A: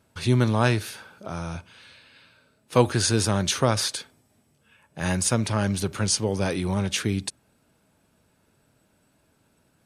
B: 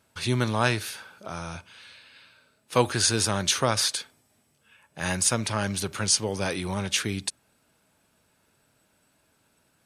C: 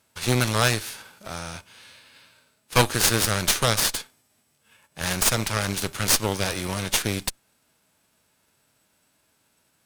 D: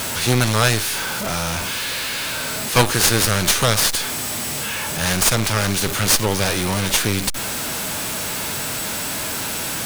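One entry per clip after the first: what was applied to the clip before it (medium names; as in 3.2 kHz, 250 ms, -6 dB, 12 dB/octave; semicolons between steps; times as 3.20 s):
tilt shelf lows -4 dB, about 640 Hz; trim -2 dB
formants flattened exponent 0.6; Chebyshev shaper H 8 -12 dB, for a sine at -4 dBFS
jump at every zero crossing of -21.5 dBFS; trim +2 dB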